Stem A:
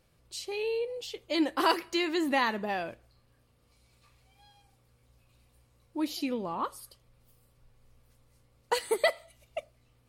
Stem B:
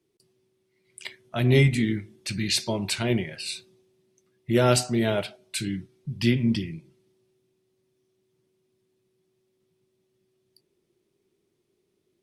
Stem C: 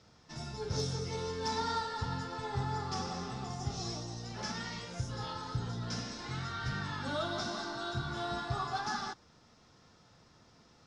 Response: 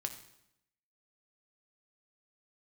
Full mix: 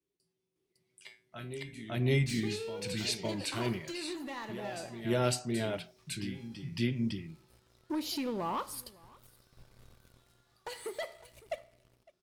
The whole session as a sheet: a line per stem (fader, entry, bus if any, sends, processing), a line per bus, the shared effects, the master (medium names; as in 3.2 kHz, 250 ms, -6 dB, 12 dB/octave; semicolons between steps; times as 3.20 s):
-7.5 dB, 1.95 s, no bus, send -6 dB, echo send -21.5 dB, compression 4:1, threshold -37 dBFS, peak gain reduction 14.5 dB; waveshaping leveller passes 3; auto duck -15 dB, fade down 0.40 s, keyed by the second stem
-4.5 dB, 0.00 s, bus A, no send, echo send -5 dB, none
-11.0 dB, 2.00 s, bus A, send -16 dB, no echo send, high-pass 1.3 kHz; valve stage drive 54 dB, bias 0.6
bus A: 0.0 dB, feedback comb 57 Hz, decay 0.27 s, harmonics odd, mix 90%; compression 6:1, threshold -40 dBFS, peak gain reduction 13 dB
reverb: on, RT60 0.80 s, pre-delay 4 ms
echo: delay 557 ms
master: none